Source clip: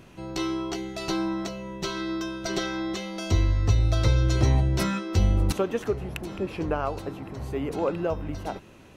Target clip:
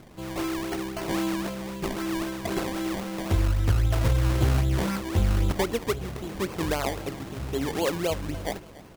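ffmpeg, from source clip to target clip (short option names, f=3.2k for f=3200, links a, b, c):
-filter_complex "[0:a]asplit=2[a][b];[b]alimiter=limit=-18dB:level=0:latency=1:release=379,volume=0dB[c];[a][c]amix=inputs=2:normalize=0,acrusher=samples=23:mix=1:aa=0.000001:lfo=1:lforange=23:lforate=3.8,aecho=1:1:286|572|858:0.112|0.0482|0.0207,volume=-5dB"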